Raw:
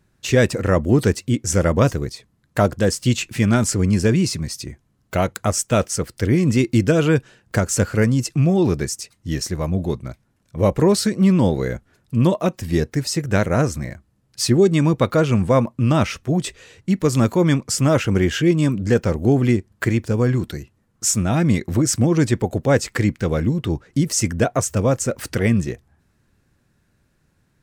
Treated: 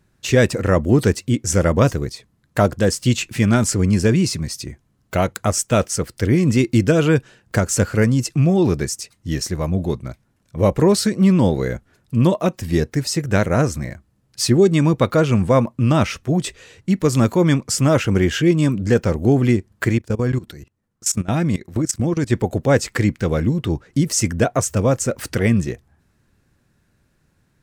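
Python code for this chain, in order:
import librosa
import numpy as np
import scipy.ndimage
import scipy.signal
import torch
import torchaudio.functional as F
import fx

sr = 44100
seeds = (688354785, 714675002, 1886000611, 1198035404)

y = fx.level_steps(x, sr, step_db=19, at=(19.97, 22.29), fade=0.02)
y = y * 10.0 ** (1.0 / 20.0)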